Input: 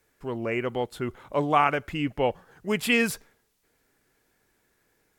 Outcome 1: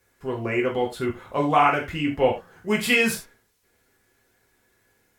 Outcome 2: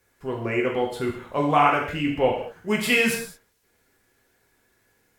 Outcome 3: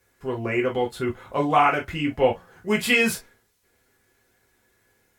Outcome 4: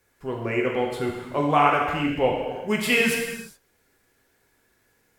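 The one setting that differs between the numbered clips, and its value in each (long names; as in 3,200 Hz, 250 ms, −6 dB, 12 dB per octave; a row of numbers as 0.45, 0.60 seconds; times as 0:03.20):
reverb whose tail is shaped and stops, gate: 120, 240, 80, 440 milliseconds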